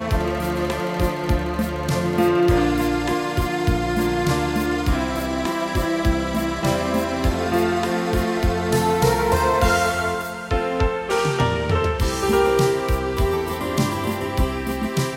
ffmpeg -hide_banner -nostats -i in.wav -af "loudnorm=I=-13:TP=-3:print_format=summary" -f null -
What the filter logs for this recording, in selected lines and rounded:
Input Integrated:    -21.4 LUFS
Input True Peak:      -5.3 dBTP
Input LRA:             1.6 LU
Input Threshold:     -31.4 LUFS